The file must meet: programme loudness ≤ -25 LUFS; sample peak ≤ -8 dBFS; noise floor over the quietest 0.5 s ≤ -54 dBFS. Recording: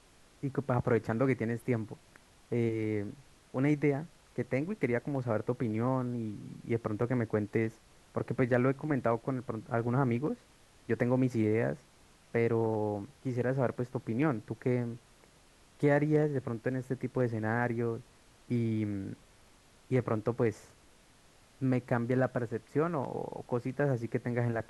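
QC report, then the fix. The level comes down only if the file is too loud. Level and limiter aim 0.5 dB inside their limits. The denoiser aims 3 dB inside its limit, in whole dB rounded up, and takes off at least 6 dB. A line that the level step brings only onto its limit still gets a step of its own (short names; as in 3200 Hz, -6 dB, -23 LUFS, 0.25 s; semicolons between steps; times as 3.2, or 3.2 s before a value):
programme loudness -32.5 LUFS: OK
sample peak -14.0 dBFS: OK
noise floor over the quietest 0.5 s -61 dBFS: OK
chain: none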